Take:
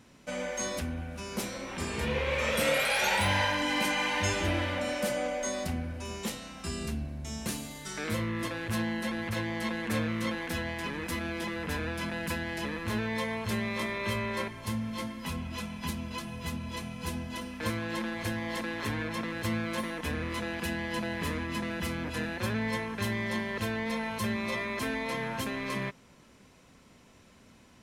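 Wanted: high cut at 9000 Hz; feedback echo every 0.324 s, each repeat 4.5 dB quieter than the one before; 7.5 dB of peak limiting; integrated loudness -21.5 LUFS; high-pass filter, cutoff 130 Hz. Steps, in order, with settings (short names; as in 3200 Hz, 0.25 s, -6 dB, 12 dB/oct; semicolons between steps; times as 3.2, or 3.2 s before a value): HPF 130 Hz; LPF 9000 Hz; limiter -23 dBFS; feedback echo 0.324 s, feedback 60%, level -4.5 dB; gain +11 dB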